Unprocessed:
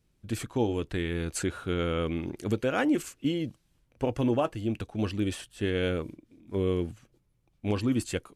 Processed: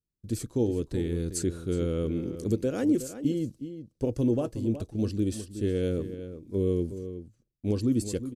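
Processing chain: gate -58 dBFS, range -22 dB; band shelf 1500 Hz -14 dB 2.6 oct; outdoor echo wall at 63 m, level -11 dB; gain +1.5 dB

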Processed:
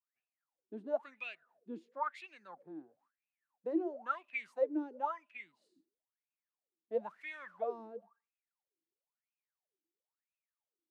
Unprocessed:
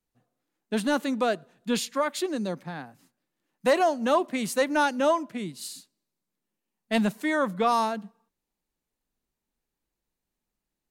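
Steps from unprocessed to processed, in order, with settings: 7.05–7.86 added noise pink -51 dBFS; wah 0.99 Hz 320–2600 Hz, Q 19; gain +4.5 dB

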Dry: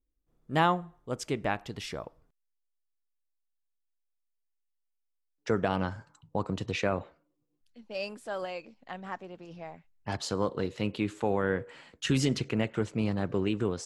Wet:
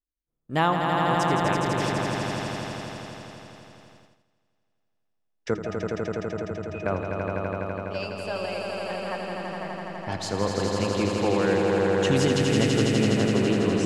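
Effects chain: 5.54–6.86 octave resonator D#, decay 0.12 s; on a send: swelling echo 83 ms, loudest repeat 5, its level -5 dB; on the sum: gate -54 dBFS, range -15 dB; gain +2 dB

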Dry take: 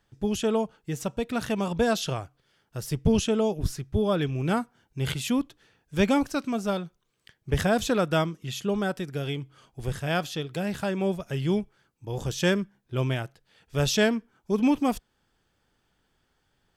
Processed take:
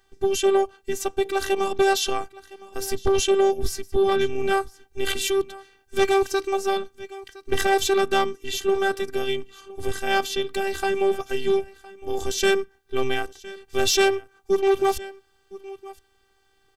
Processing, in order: echo 1.012 s -21.5 dB; added harmonics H 5 -6 dB, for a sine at -8 dBFS; robotiser 389 Hz; gain -1.5 dB

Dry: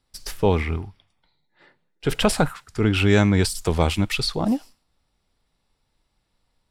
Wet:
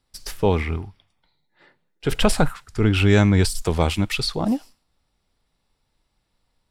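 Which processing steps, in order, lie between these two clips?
2.12–3.62 low shelf 64 Hz +10 dB

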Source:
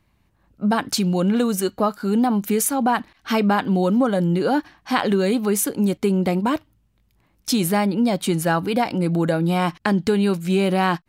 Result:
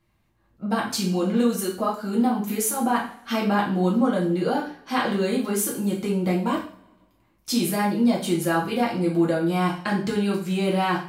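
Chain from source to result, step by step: two-slope reverb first 0.43 s, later 1.6 s, from -25 dB, DRR -4.5 dB; gain -8.5 dB

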